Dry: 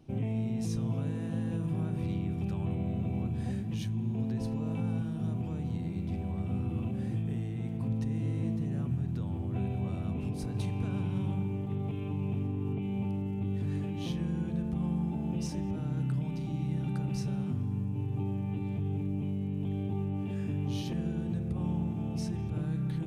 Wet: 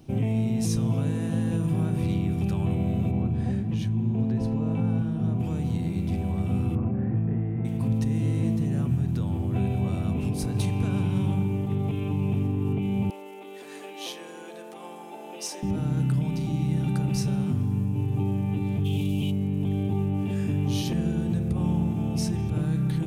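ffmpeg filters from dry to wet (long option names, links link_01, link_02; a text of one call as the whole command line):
ffmpeg -i in.wav -filter_complex "[0:a]asplit=3[link_01][link_02][link_03];[link_01]afade=type=out:start_time=3.1:duration=0.02[link_04];[link_02]lowpass=frequency=1700:poles=1,afade=type=in:start_time=3.1:duration=0.02,afade=type=out:start_time=5.39:duration=0.02[link_05];[link_03]afade=type=in:start_time=5.39:duration=0.02[link_06];[link_04][link_05][link_06]amix=inputs=3:normalize=0,asettb=1/sr,asplit=3[link_07][link_08][link_09];[link_07]atrim=end=6.754[link_10];[link_08]atrim=start=6.75:end=7.65,asetpts=PTS-STARTPTS,afade=type=in:duration=0.004:curve=qsin,afade=type=out:start_time=0.896:duration=0.004:curve=qsin,lowpass=frequency=1800:width=0.5412,lowpass=frequency=1800:width=1.3066[link_11];[link_09]atrim=start=7.646[link_12];[link_10][link_11]acrossfade=duration=0.004:curve1=hsin:curve2=qsin[link_13];[link_13][link_12]acrossfade=duration=0.004:curve1=qsin:curve2=hsin,asettb=1/sr,asplit=3[link_14][link_15][link_16];[link_14]atrim=end=13.104[link_17];[link_15]atrim=start=13.1:end=15.63,asetpts=PTS-STARTPTS,afade=type=in:duration=0.004:curve=qsin,afade=type=out:start_time=2.526:duration=0.004:curve=qsin,highpass=frequency=430:width=0.5412,highpass=frequency=430:width=1.3066[link_18];[link_16]atrim=start=15.626[link_19];[link_17][link_18]acrossfade=duration=0.004:curve1=hsin:curve2=qsin[link_20];[link_20][link_19]acrossfade=duration=0.004:curve1=qsin:curve2=hsin,asplit=3[link_21][link_22][link_23];[link_21]afade=type=out:start_time=18.84:duration=0.02[link_24];[link_22]highshelf=frequency=2300:width_type=q:width=3:gain=10.5,afade=type=in:start_time=18.84:duration=0.02,afade=type=out:start_time=19.3:duration=0.02[link_25];[link_23]afade=type=in:start_time=19.3:duration=0.02[link_26];[link_24][link_25][link_26]amix=inputs=3:normalize=0,highshelf=frequency=6100:gain=9,volume=7dB" out.wav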